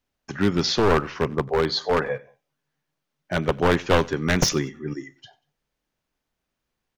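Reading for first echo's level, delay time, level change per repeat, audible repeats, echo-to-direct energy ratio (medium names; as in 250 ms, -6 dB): -23.0 dB, 94 ms, -9.0 dB, 2, -22.5 dB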